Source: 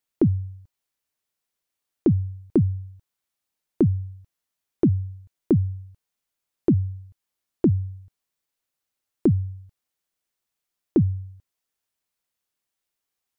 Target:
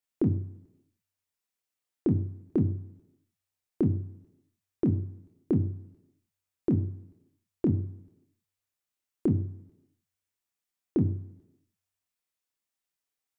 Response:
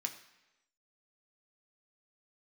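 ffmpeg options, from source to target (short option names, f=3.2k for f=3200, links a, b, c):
-filter_complex "[0:a]asplit=2[a][b];[1:a]atrim=start_sample=2205,adelay=26[c];[b][c]afir=irnorm=-1:irlink=0,volume=-1dB[d];[a][d]amix=inputs=2:normalize=0,volume=-7.5dB"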